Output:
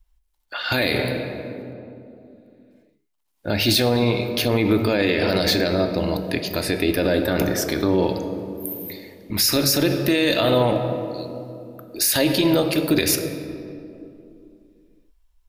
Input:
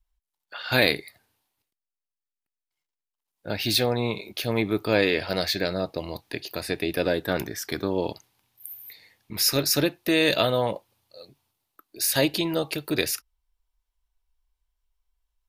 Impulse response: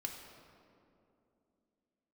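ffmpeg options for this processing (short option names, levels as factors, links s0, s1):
-filter_complex "[0:a]asplit=2[s0][s1];[1:a]atrim=start_sample=2205,lowshelf=f=280:g=6.5[s2];[s1][s2]afir=irnorm=-1:irlink=0,volume=1.26[s3];[s0][s3]amix=inputs=2:normalize=0,alimiter=level_in=2.99:limit=0.891:release=50:level=0:latency=1,volume=0.422"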